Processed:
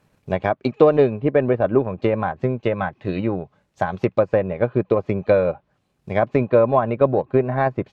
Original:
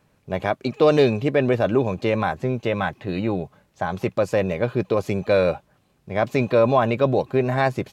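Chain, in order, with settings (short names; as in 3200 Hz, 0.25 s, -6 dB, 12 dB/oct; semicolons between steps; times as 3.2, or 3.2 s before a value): treble ducked by the level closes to 1600 Hz, closed at -18.5 dBFS; transient shaper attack +5 dB, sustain -6 dB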